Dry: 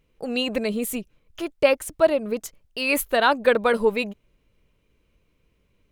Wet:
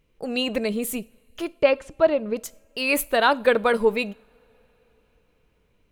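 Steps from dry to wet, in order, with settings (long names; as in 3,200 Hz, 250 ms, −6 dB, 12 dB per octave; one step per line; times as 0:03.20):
0:01.53–0:02.36: high-frequency loss of the air 140 metres
on a send: convolution reverb, pre-delay 3 ms, DRR 19 dB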